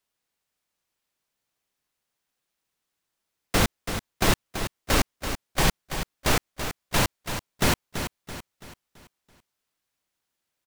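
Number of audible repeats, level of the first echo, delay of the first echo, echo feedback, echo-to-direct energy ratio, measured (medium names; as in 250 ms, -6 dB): 4, -9.0 dB, 333 ms, 43%, -8.0 dB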